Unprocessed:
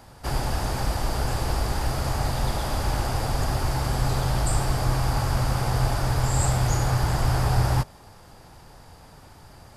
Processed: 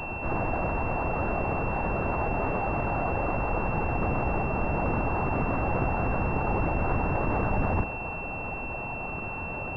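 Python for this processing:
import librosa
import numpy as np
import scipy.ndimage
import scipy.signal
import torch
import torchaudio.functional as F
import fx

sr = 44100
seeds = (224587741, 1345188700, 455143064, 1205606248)

p1 = scipy.signal.sosfilt(scipy.signal.butter(2, 150.0, 'highpass', fs=sr, output='sos'), x)
p2 = fx.fuzz(p1, sr, gain_db=49.0, gate_db=-58.0)
p3 = p1 + (p2 * librosa.db_to_amplitude(-10.0))
p4 = fx.lpc_vocoder(p3, sr, seeds[0], excitation='whisper', order=10)
p5 = fx.pwm(p4, sr, carrier_hz=2700.0)
y = p5 * librosa.db_to_amplitude(-5.5)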